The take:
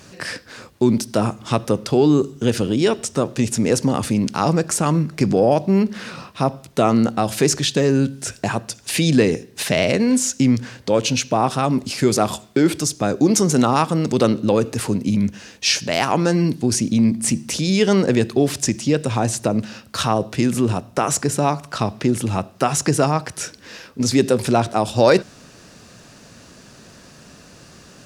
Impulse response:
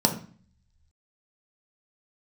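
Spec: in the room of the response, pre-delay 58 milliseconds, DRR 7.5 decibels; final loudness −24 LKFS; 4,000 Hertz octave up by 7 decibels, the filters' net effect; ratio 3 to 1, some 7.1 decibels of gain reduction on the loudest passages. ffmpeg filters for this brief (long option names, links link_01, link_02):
-filter_complex "[0:a]equalizer=frequency=4000:width_type=o:gain=9,acompressor=threshold=-18dB:ratio=3,asplit=2[link_01][link_02];[1:a]atrim=start_sample=2205,adelay=58[link_03];[link_02][link_03]afir=irnorm=-1:irlink=0,volume=-21dB[link_04];[link_01][link_04]amix=inputs=2:normalize=0,volume=-4dB"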